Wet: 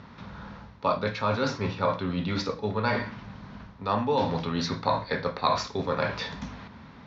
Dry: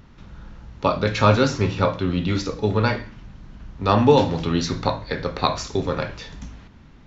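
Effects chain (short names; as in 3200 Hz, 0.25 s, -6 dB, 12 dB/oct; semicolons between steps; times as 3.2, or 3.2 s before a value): reverse; compressor 5:1, threshold -29 dBFS, peak gain reduction 17.5 dB; reverse; speaker cabinet 120–5000 Hz, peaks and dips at 140 Hz -5 dB, 330 Hz -10 dB, 1000 Hz +4 dB, 2900 Hz -5 dB; gain +6 dB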